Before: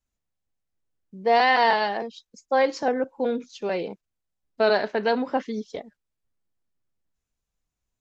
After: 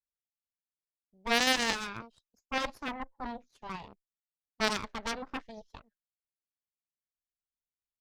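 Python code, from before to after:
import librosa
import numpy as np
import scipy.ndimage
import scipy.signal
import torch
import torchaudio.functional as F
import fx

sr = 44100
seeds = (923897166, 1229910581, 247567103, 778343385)

y = fx.cheby_harmonics(x, sr, harmonics=(3, 6), levels_db=(-9, -21), full_scale_db=-7.5)
y = fx.clip_asym(y, sr, top_db=-27.5, bottom_db=-9.5)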